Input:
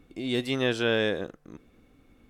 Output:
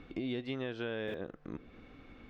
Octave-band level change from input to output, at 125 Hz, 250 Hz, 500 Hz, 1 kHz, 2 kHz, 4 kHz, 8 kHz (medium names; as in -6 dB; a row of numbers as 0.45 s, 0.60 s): -9.0 dB, -8.0 dB, -11.0 dB, -11.0 dB, -13.0 dB, -15.0 dB, under -25 dB